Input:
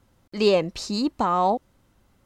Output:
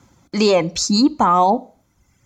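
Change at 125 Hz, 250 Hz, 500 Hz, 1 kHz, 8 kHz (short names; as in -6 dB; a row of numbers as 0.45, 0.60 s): +7.0, +9.0, +4.0, +7.5, +15.5 dB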